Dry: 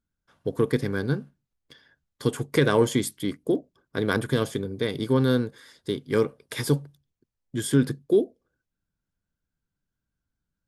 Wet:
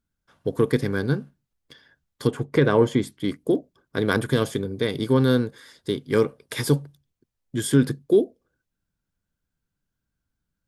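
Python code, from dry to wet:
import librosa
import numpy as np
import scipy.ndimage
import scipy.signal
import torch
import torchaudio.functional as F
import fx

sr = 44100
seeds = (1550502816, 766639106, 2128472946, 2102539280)

y = fx.lowpass(x, sr, hz=1800.0, slope=6, at=(2.27, 3.24))
y = y * librosa.db_to_amplitude(2.5)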